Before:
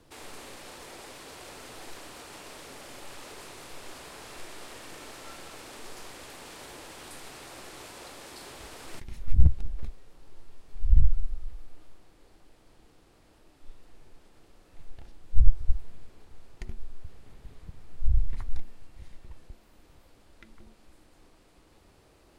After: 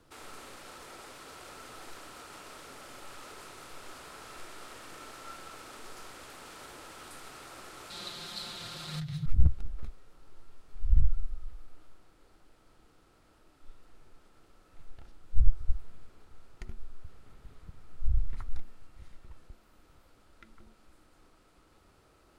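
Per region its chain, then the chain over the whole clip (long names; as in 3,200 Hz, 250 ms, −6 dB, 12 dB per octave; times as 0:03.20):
0:07.90–0:09.26: parametric band 4,100 Hz +15 dB 0.63 octaves + comb filter 5.8 ms, depth 72% + frequency shifter −160 Hz
whole clip: parametric band 1,300 Hz +10.5 dB 0.29 octaves; notch filter 1,200 Hz, Q 28; level −4 dB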